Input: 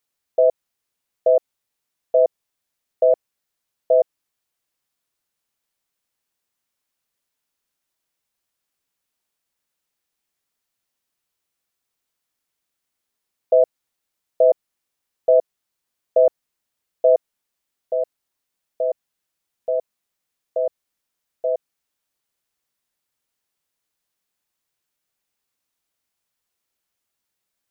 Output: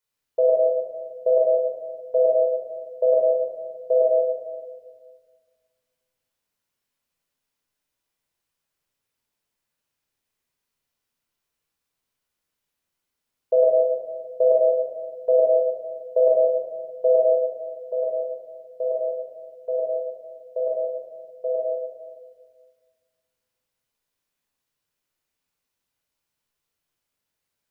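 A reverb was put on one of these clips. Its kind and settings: simulated room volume 1700 m³, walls mixed, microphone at 4.9 m; trim -8.5 dB

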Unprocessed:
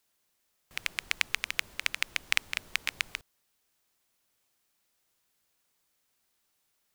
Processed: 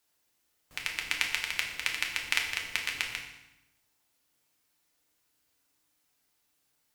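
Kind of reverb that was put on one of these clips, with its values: FDN reverb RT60 0.93 s, low-frequency decay 1.35×, high-frequency decay 0.9×, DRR 0 dB; trim -2 dB

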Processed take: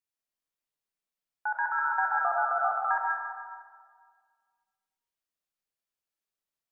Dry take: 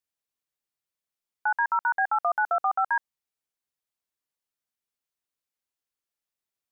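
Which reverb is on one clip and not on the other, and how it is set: algorithmic reverb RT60 1.8 s, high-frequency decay 0.6×, pre-delay 55 ms, DRR -2 dB; trim -5.5 dB

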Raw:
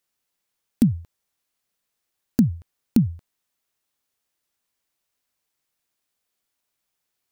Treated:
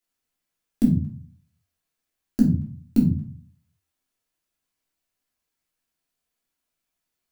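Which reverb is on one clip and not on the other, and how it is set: simulated room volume 260 m³, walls furnished, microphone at 3 m; trim -8 dB

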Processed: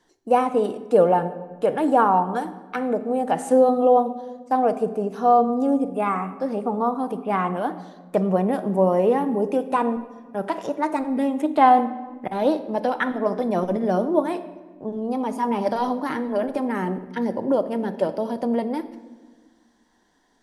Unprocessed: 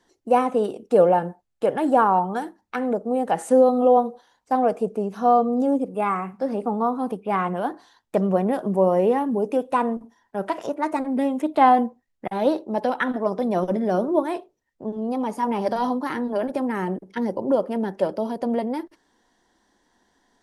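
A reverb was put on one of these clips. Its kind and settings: simulated room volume 1200 m³, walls mixed, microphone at 0.48 m

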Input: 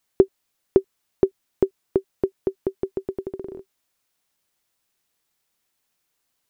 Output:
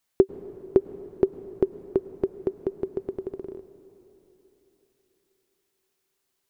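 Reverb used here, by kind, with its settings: plate-style reverb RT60 3.8 s, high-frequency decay 0.8×, pre-delay 85 ms, DRR 14 dB; trim -2.5 dB

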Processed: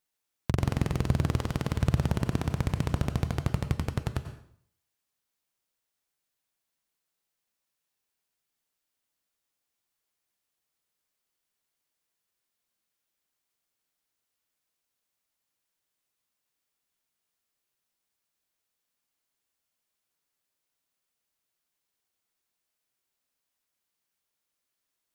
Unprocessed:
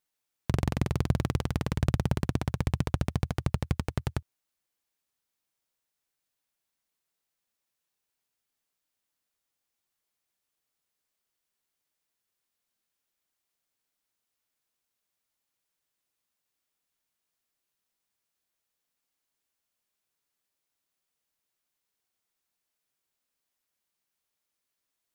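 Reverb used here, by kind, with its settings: plate-style reverb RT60 0.6 s, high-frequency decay 0.9×, pre-delay 80 ms, DRR 8.5 dB

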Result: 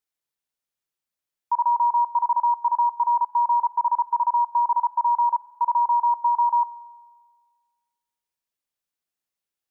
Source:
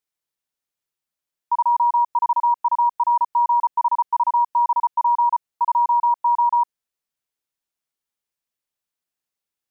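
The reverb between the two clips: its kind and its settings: spring tank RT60 1.6 s, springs 43 ms, chirp 65 ms, DRR 16.5 dB; trim -2 dB

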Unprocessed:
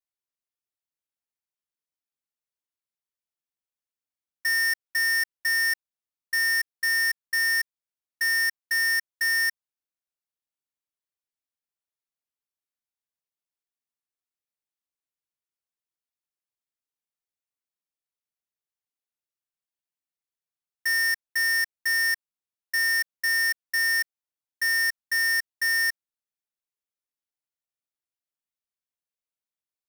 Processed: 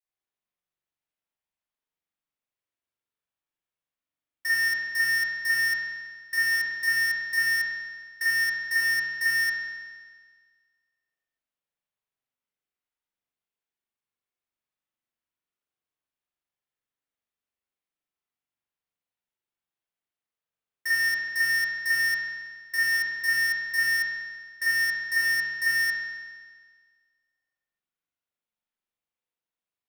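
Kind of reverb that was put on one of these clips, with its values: spring tank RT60 1.6 s, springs 42 ms, chirp 50 ms, DRR -8.5 dB; trim -5 dB

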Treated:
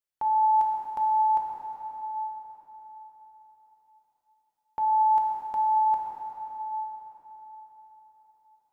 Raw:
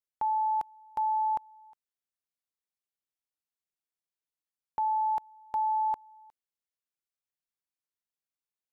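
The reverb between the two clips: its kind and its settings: plate-style reverb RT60 4.5 s, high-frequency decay 0.8×, DRR -2 dB

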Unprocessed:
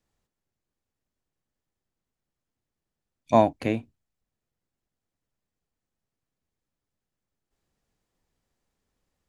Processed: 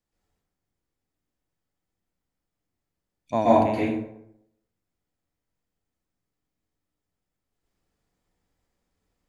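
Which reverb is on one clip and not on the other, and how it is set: plate-style reverb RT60 0.77 s, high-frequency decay 0.55×, pre-delay 110 ms, DRR -8 dB; trim -7 dB

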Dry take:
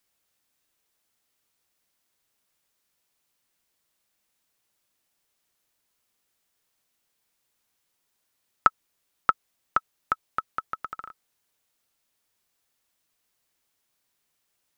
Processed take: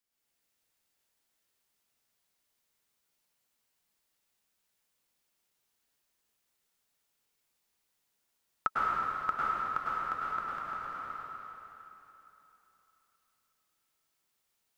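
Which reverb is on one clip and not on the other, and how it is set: plate-style reverb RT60 3.3 s, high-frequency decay 0.95×, pre-delay 90 ms, DRR -8.5 dB; trim -12 dB

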